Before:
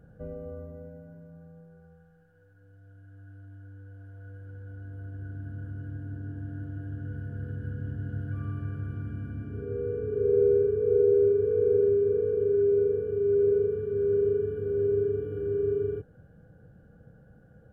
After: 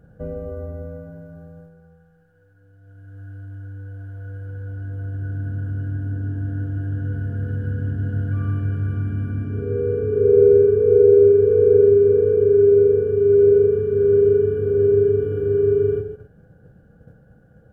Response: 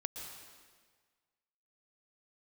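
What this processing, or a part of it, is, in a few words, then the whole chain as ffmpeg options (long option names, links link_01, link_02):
keyed gated reverb: -filter_complex "[0:a]asplit=3[link_01][link_02][link_03];[1:a]atrim=start_sample=2205[link_04];[link_02][link_04]afir=irnorm=-1:irlink=0[link_05];[link_03]apad=whole_len=781875[link_06];[link_05][link_06]sidechaingate=range=-33dB:threshold=-50dB:ratio=16:detection=peak,volume=1.5dB[link_07];[link_01][link_07]amix=inputs=2:normalize=0,volume=3dB"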